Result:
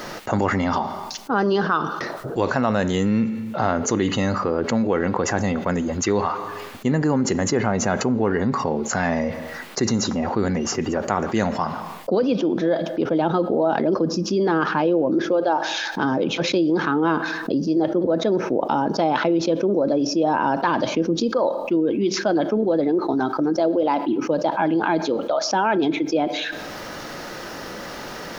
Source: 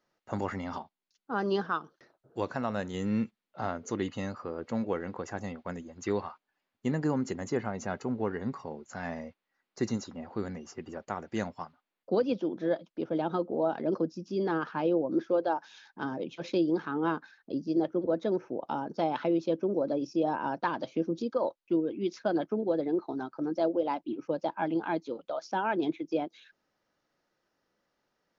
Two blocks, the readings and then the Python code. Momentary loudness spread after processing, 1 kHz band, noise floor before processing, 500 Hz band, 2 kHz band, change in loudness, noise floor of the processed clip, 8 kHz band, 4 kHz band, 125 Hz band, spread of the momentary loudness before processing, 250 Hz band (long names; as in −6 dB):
7 LU, +12.0 dB, below −85 dBFS, +10.0 dB, +13.5 dB, +10.5 dB, −34 dBFS, can't be measured, +17.5 dB, +12.0 dB, 10 LU, +10.5 dB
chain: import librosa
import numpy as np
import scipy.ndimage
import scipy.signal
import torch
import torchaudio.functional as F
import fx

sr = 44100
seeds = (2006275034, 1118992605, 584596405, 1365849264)

y = fx.rev_schroeder(x, sr, rt60_s=0.67, comb_ms=28, drr_db=20.0)
y = fx.env_flatten(y, sr, amount_pct=70)
y = y * librosa.db_to_amplitude(5.5)